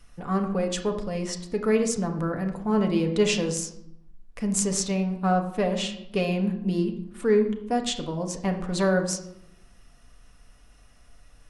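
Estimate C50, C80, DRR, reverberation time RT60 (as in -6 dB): 9.0 dB, 11.5 dB, 3.0 dB, 0.80 s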